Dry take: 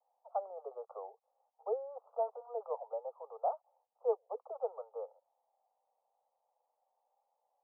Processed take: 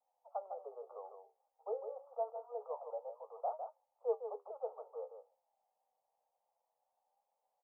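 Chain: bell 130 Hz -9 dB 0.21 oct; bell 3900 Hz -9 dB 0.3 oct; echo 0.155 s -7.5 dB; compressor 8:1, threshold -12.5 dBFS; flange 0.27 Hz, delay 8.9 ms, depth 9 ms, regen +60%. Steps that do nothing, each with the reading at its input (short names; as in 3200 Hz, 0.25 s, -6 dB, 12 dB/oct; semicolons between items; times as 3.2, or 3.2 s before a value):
bell 130 Hz: input band starts at 380 Hz; bell 3900 Hz: input band ends at 1200 Hz; compressor, threshold -12.5 dBFS: input peak -20.5 dBFS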